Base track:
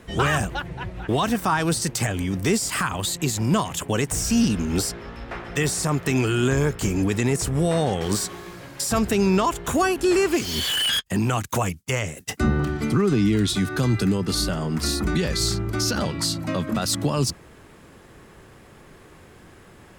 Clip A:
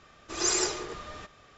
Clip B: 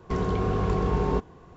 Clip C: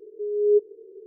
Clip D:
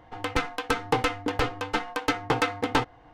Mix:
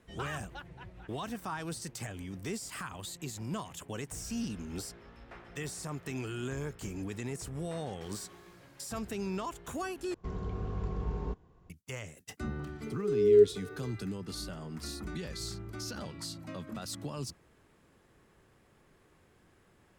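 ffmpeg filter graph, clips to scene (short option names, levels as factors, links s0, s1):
-filter_complex "[0:a]volume=0.15[s0];[2:a]lowshelf=f=130:g=10.5[s1];[3:a]aemphasis=mode=production:type=50fm[s2];[s0]asplit=2[s3][s4];[s3]atrim=end=10.144[s5];[s1]atrim=end=1.56,asetpts=PTS-STARTPTS,volume=0.158[s6];[s4]atrim=start=11.696[s7];[s2]atrim=end=1.06,asetpts=PTS-STARTPTS,volume=0.891,afade=t=in:d=0.004:c=hsin,afade=t=out:st=1.056:d=0.004:c=hsin,adelay=12850[s8];[s5][s6]acrossfade=d=0.004:c1=hsin:c2=hsin[s9];[s9][s7]acrossfade=d=0.004:c1=hsin:c2=hsin[s10];[s10][s8]amix=inputs=2:normalize=0"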